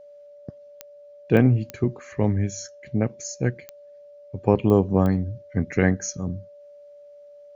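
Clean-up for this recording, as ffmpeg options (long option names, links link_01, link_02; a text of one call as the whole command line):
ffmpeg -i in.wav -af "adeclick=threshold=4,bandreject=frequency=580:width=30" out.wav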